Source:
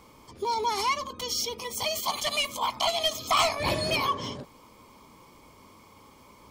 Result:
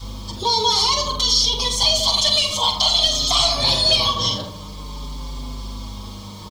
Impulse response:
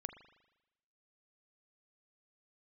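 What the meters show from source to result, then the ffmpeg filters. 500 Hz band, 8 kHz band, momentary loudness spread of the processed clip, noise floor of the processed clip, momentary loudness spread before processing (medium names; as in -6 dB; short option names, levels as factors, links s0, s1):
+4.5 dB, +11.0 dB, 19 LU, -35 dBFS, 7 LU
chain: -filter_complex "[0:a]asplit=2[s0][s1];[s1]adelay=79,lowpass=f=1300:p=1,volume=0.422,asplit=2[s2][s3];[s3]adelay=79,lowpass=f=1300:p=1,volume=0.54,asplit=2[s4][s5];[s5]adelay=79,lowpass=f=1300:p=1,volume=0.54,asplit=2[s6][s7];[s7]adelay=79,lowpass=f=1300:p=1,volume=0.54,asplit=2[s8][s9];[s9]adelay=79,lowpass=f=1300:p=1,volume=0.54,asplit=2[s10][s11];[s11]adelay=79,lowpass=f=1300:p=1,volume=0.54,asplit=2[s12][s13];[s13]adelay=79,lowpass=f=1300:p=1,volume=0.54[s14];[s0][s2][s4][s6][s8][s10][s12][s14]amix=inputs=8:normalize=0,acrossover=split=590|3500[s15][s16][s17];[s15]acompressor=threshold=0.0158:ratio=4[s18];[s16]acompressor=threshold=0.0178:ratio=4[s19];[s17]acompressor=threshold=0.0178:ratio=4[s20];[s18][s19][s20]amix=inputs=3:normalize=0,highshelf=f=2900:t=q:w=3:g=7,asplit=2[s21][s22];[s22]alimiter=limit=0.075:level=0:latency=1:release=120,volume=1.26[s23];[s21][s23]amix=inputs=2:normalize=0,acontrast=87,lowpass=6000,asplit=2[s24][s25];[1:a]atrim=start_sample=2205,asetrate=40572,aresample=44100[s26];[s25][s26]afir=irnorm=-1:irlink=0,volume=0.282[s27];[s24][s27]amix=inputs=2:normalize=0,acrusher=bits=7:mix=0:aa=0.000001,aeval=exprs='val(0)+0.0398*(sin(2*PI*50*n/s)+sin(2*PI*2*50*n/s)/2+sin(2*PI*3*50*n/s)/3+sin(2*PI*4*50*n/s)/4+sin(2*PI*5*50*n/s)/5)':c=same,asplit=2[s28][s29];[s29]adelay=44,volume=0.398[s30];[s28][s30]amix=inputs=2:normalize=0,adynamicequalizer=threshold=0.0112:dfrequency=340:dqfactor=1.5:tfrequency=340:tqfactor=1.5:attack=5:release=100:ratio=0.375:range=3:mode=cutabove:tftype=bell,asplit=2[s31][s32];[s32]adelay=5.6,afreqshift=-0.52[s33];[s31][s33]amix=inputs=2:normalize=1"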